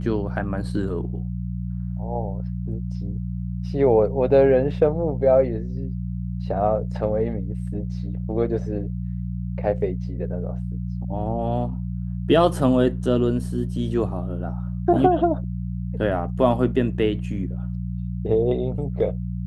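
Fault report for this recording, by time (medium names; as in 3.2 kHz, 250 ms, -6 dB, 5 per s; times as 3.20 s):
hum 60 Hz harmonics 3 -28 dBFS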